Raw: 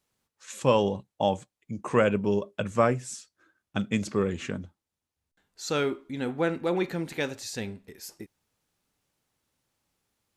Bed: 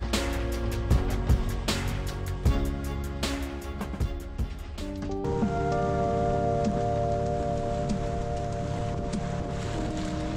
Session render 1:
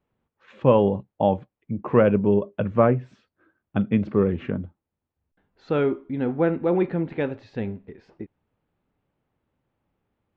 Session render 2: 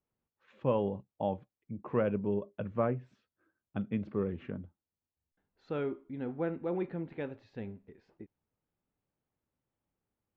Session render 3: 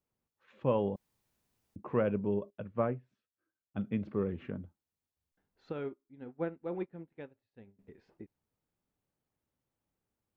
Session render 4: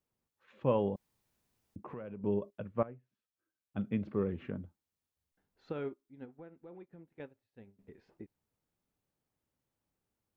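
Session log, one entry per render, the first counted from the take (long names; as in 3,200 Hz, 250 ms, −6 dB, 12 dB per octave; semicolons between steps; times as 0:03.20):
low-pass filter 3,200 Hz 24 dB per octave; tilt shelving filter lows +7 dB, about 1,400 Hz
level −12.5 dB
0:00.96–0:01.76: fill with room tone; 0:02.50–0:03.78: expander for the loud parts, over −51 dBFS; 0:05.72–0:07.79: expander for the loud parts 2.5 to 1, over −47 dBFS
0:01.79–0:02.24: downward compressor, threshold −41 dBFS; 0:02.83–0:03.82: fade in, from −17.5 dB; 0:06.25–0:07.20: downward compressor 4 to 1, threshold −50 dBFS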